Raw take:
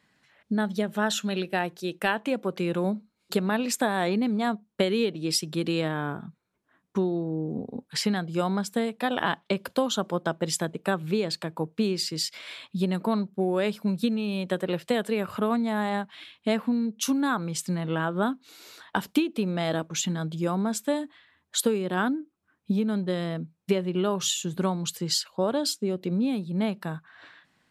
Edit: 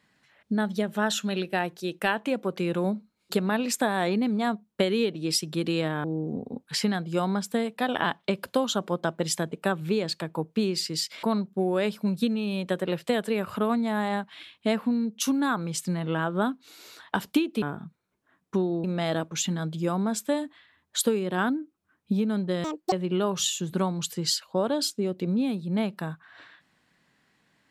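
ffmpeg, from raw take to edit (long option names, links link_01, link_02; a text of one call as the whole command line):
ffmpeg -i in.wav -filter_complex "[0:a]asplit=7[link_01][link_02][link_03][link_04][link_05][link_06][link_07];[link_01]atrim=end=6.042[link_08];[link_02]atrim=start=7.258:end=12.452[link_09];[link_03]atrim=start=13.038:end=19.432[link_10];[link_04]atrim=start=6.038:end=7.262[link_11];[link_05]atrim=start=19.428:end=23.234[link_12];[link_06]atrim=start=23.23:end=23.76,asetpts=PTS-STARTPTS,asetrate=82908,aresample=44100,atrim=end_sample=12432,asetpts=PTS-STARTPTS[link_13];[link_07]atrim=start=23.756[link_14];[link_08][link_09]acrossfade=duration=0.004:curve1=hsin:curve2=hsin[link_15];[link_15][link_10]acrossfade=duration=0.004:curve1=hsin:curve2=hsin[link_16];[link_16][link_11]acrossfade=duration=0.004:curve1=hsin:curve2=hsin[link_17];[link_17][link_12]acrossfade=duration=0.004:curve1=hsin:curve2=hsin[link_18];[link_18][link_13]acrossfade=duration=0.004:curve1=hsin:curve2=hsin[link_19];[link_19][link_14]acrossfade=duration=0.004:curve1=hsin:curve2=hsin" out.wav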